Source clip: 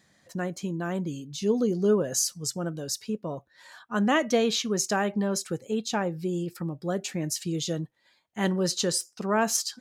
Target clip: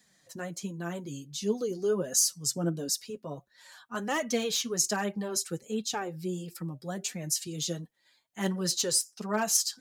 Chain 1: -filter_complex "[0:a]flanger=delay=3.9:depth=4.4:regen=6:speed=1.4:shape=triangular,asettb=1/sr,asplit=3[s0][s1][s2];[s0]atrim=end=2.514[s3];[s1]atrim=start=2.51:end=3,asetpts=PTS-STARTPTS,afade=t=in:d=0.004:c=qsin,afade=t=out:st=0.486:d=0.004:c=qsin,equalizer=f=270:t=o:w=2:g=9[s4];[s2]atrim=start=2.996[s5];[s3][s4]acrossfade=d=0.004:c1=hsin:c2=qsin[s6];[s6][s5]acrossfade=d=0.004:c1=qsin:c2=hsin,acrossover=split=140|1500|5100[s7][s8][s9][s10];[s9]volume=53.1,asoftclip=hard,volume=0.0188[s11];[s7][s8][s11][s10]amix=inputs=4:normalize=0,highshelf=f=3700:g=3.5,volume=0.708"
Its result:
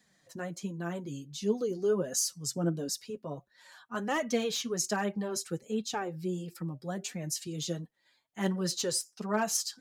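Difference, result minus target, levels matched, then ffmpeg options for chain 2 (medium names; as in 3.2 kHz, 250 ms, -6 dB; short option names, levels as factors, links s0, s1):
8 kHz band -3.0 dB
-filter_complex "[0:a]flanger=delay=3.9:depth=4.4:regen=6:speed=1.4:shape=triangular,asettb=1/sr,asplit=3[s0][s1][s2];[s0]atrim=end=2.514[s3];[s1]atrim=start=2.51:end=3,asetpts=PTS-STARTPTS,afade=t=in:d=0.004:c=qsin,afade=t=out:st=0.486:d=0.004:c=qsin,equalizer=f=270:t=o:w=2:g=9[s4];[s2]atrim=start=2.996[s5];[s3][s4]acrossfade=d=0.004:c1=hsin:c2=qsin[s6];[s6][s5]acrossfade=d=0.004:c1=qsin:c2=hsin,acrossover=split=140|1500|5100[s7][s8][s9][s10];[s9]volume=53.1,asoftclip=hard,volume=0.0188[s11];[s7][s8][s11][s10]amix=inputs=4:normalize=0,highshelf=f=3700:g=10.5,volume=0.708"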